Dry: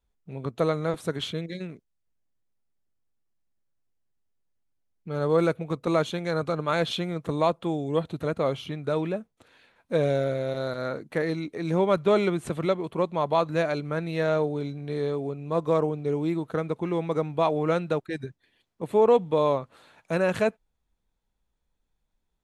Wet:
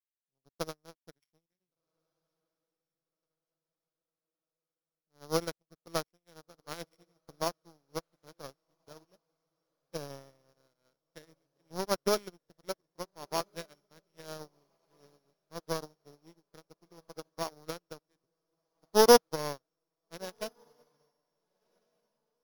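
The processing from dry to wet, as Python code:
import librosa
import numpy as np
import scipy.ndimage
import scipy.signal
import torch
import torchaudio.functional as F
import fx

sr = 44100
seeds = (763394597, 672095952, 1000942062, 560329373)

p1 = np.r_[np.sort(x[:len(x) // 8 * 8].reshape(-1, 8), axis=1).ravel(), x[len(x) // 8 * 8:]]
p2 = fx.power_curve(p1, sr, exponent=2.0)
p3 = p2 + fx.echo_diffused(p2, sr, ms=1509, feedback_pct=50, wet_db=-13.5, dry=0)
p4 = fx.upward_expand(p3, sr, threshold_db=-47.0, expansion=2.5)
y = p4 * librosa.db_to_amplitude(6.0)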